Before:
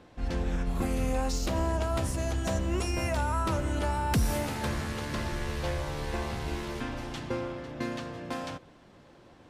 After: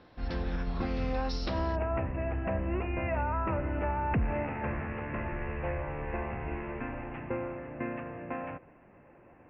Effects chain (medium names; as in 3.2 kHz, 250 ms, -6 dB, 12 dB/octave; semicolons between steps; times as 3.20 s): rippled Chebyshev low-pass 5.5 kHz, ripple 3 dB, from 1.75 s 2.7 kHz